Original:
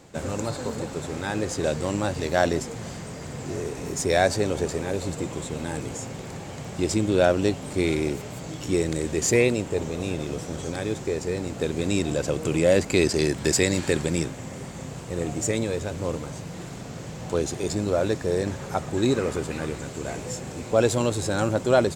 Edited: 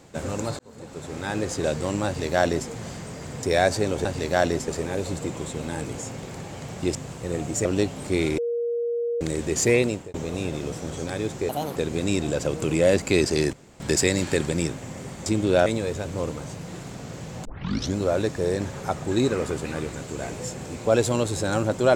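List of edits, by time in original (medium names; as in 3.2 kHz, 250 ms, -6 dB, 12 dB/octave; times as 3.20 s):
0.59–1.32 s: fade in
2.06–2.69 s: copy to 4.64 s
3.43–4.02 s: delete
6.91–7.31 s: swap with 14.82–15.52 s
8.04–8.87 s: bleep 472 Hz -23 dBFS
9.55–9.80 s: fade out
11.15–11.59 s: speed 163%
13.36 s: insert room tone 0.27 s
17.31 s: tape start 0.51 s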